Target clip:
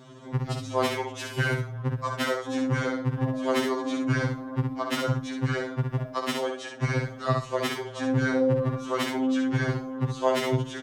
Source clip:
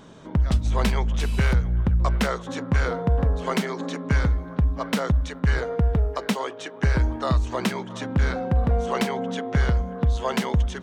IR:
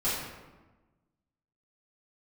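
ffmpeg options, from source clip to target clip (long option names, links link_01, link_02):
-af "highpass=59,aecho=1:1:65|130|195:0.562|0.0844|0.0127,afftfilt=real='re*2.45*eq(mod(b,6),0)':imag='im*2.45*eq(mod(b,6),0)':win_size=2048:overlap=0.75"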